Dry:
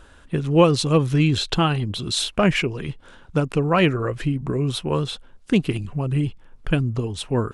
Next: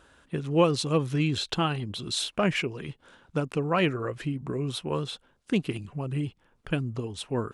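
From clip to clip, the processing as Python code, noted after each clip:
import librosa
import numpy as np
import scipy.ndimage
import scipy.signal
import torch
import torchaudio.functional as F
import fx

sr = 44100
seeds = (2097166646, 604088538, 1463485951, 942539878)

y = fx.highpass(x, sr, hz=130.0, slope=6)
y = y * librosa.db_to_amplitude(-6.0)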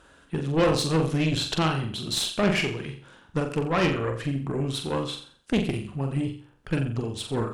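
y = fx.room_flutter(x, sr, wall_m=7.5, rt60_s=0.46)
y = fx.cheby_harmonics(y, sr, harmonics=(5, 8), levels_db=(-9, -13), full_scale_db=-6.5)
y = y * librosa.db_to_amplitude(-7.0)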